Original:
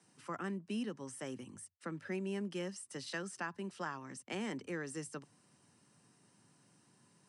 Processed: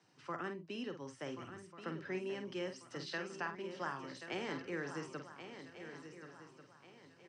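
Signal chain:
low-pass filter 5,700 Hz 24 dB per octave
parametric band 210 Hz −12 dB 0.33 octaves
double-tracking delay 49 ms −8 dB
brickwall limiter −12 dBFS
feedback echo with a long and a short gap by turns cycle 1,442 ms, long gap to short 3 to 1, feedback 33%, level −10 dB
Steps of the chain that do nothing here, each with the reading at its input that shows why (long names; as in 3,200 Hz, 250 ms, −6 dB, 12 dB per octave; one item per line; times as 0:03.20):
brickwall limiter −12 dBFS: peak of its input −26.0 dBFS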